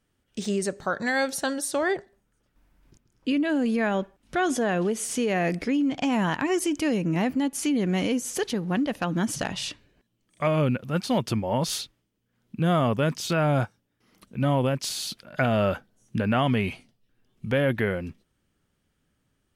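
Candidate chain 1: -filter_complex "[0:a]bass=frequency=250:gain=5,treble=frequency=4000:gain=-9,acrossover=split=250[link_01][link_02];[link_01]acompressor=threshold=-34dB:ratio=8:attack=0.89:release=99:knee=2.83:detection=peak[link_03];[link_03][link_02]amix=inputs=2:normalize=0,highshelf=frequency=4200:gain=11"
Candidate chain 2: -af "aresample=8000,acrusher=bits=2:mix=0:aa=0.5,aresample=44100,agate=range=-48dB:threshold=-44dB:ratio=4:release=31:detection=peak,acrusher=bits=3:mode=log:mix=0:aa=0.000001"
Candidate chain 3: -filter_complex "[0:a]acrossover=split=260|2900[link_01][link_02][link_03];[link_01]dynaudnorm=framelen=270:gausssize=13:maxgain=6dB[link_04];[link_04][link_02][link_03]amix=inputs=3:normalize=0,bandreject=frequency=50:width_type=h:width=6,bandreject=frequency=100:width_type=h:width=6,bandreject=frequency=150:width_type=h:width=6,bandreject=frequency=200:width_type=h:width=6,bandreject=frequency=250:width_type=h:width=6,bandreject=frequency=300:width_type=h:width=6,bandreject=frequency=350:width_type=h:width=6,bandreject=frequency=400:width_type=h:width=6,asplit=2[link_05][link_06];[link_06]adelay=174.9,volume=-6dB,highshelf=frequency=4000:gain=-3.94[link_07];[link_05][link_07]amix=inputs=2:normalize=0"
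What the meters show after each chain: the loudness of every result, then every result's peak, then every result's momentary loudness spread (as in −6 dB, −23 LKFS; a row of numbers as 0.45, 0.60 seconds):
−26.5, −31.5, −23.0 LKFS; −10.0, −7.0, −6.0 dBFS; 8, 14, 11 LU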